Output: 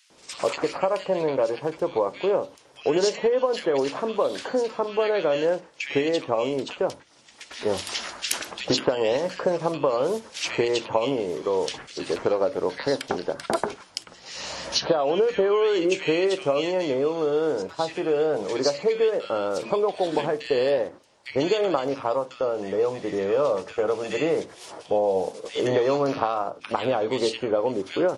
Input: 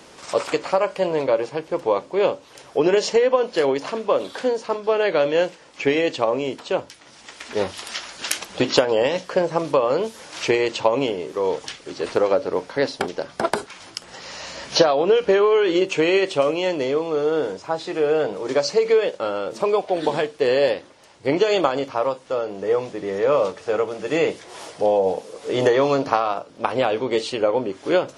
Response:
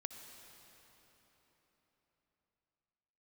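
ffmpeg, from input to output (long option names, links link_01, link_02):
-filter_complex "[0:a]agate=range=-11dB:threshold=-36dB:ratio=16:detection=peak,acompressor=threshold=-25dB:ratio=2,acrossover=split=1800[link_01][link_02];[link_01]adelay=100[link_03];[link_03][link_02]amix=inputs=2:normalize=0,volume=2dB"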